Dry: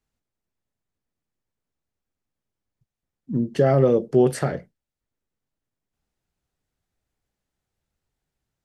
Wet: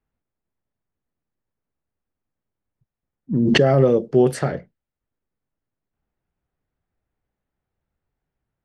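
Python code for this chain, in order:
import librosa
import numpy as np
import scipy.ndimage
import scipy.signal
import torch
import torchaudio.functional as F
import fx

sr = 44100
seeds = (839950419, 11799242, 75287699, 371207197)

y = fx.env_lowpass(x, sr, base_hz=2000.0, full_db=-14.0)
y = fx.pre_swell(y, sr, db_per_s=21.0, at=(3.31, 3.85), fade=0.02)
y = y * 10.0 ** (1.5 / 20.0)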